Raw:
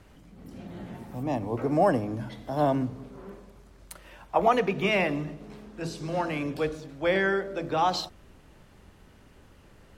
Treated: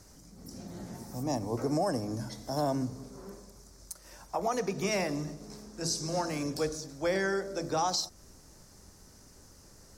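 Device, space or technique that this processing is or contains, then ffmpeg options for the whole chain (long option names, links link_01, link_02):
over-bright horn tweeter: -af "highshelf=frequency=4100:width_type=q:width=3:gain=11,alimiter=limit=-18dB:level=0:latency=1:release=224,volume=-2.5dB"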